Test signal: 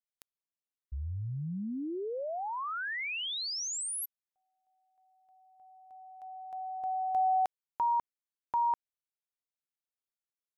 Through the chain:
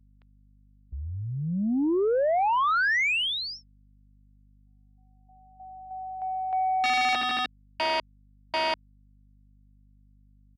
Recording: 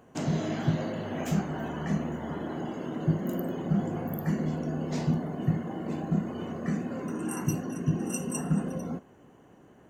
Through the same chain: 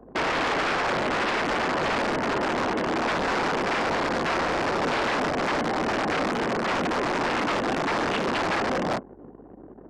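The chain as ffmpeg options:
-filter_complex "[0:a]aresample=11025,aeval=exprs='(mod(31.6*val(0)+1,2)-1)/31.6':c=same,aresample=44100,anlmdn=0.00158,acrossover=split=210 3100:gain=0.224 1 0.0708[s0][s1][s2];[s0][s1][s2]amix=inputs=3:normalize=0,aeval=exprs='0.0631*(cos(1*acos(clip(val(0)/0.0631,-1,1)))-cos(1*PI/2))+0.0178*(cos(5*acos(clip(val(0)/0.0631,-1,1)))-cos(5*PI/2))':c=same,aeval=exprs='val(0)+0.000631*(sin(2*PI*50*n/s)+sin(2*PI*2*50*n/s)/2+sin(2*PI*3*50*n/s)/3+sin(2*PI*4*50*n/s)/4+sin(2*PI*5*50*n/s)/5)':c=same,volume=2.24"

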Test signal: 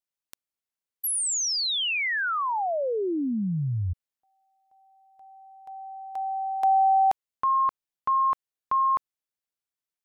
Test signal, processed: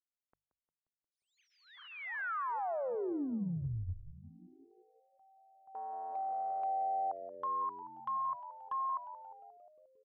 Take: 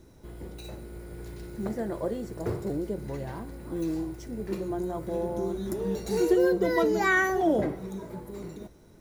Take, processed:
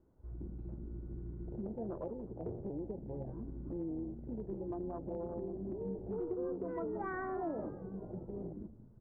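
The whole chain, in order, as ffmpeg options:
-filter_complex "[0:a]bandreject=f=50:t=h:w=6,bandreject=f=100:t=h:w=6,bandreject=f=150:t=h:w=6,afwtdn=0.0224,lowpass=f=1300:w=0.5412,lowpass=f=1300:w=1.3066,acompressor=threshold=0.0126:ratio=4:attack=0.71:release=963:knee=6:detection=peak,asplit=8[s0][s1][s2][s3][s4][s5][s6][s7];[s1]adelay=177,afreqshift=-91,volume=0.224[s8];[s2]adelay=354,afreqshift=-182,volume=0.141[s9];[s3]adelay=531,afreqshift=-273,volume=0.0891[s10];[s4]adelay=708,afreqshift=-364,volume=0.0562[s11];[s5]adelay=885,afreqshift=-455,volume=0.0351[s12];[s6]adelay=1062,afreqshift=-546,volume=0.0221[s13];[s7]adelay=1239,afreqshift=-637,volume=0.014[s14];[s0][s8][s9][s10][s11][s12][s13][s14]amix=inputs=8:normalize=0,volume=1.19"

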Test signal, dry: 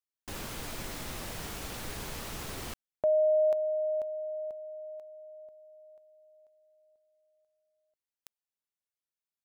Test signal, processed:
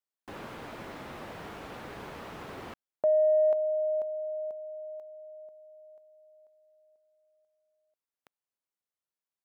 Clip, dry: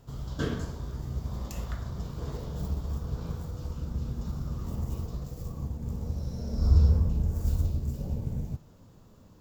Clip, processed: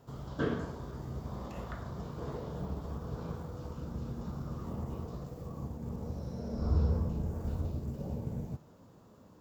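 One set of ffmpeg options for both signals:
-filter_complex "[0:a]acrossover=split=3700[s0][s1];[s1]acompressor=threshold=0.00126:ratio=4:attack=1:release=60[s2];[s0][s2]amix=inputs=2:normalize=0,highpass=f=250:p=1,acrossover=split=1600[s3][s4];[s3]acontrast=78[s5];[s5][s4]amix=inputs=2:normalize=0,volume=0.596"

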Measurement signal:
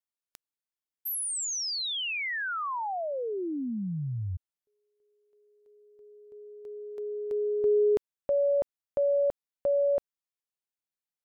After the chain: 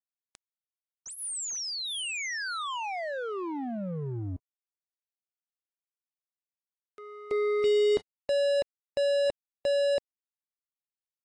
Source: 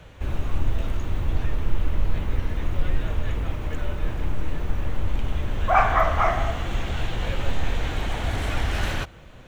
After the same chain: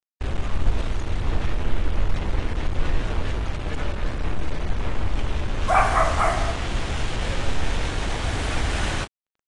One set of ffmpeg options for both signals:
-af "acrusher=bits=4:mix=0:aa=0.5" -ar 22050 -c:a aac -b:a 32k

